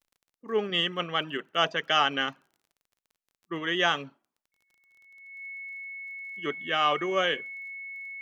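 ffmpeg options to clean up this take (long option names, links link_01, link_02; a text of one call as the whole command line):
ffmpeg -i in.wav -af "adeclick=threshold=4,bandreject=frequency=2200:width=30" out.wav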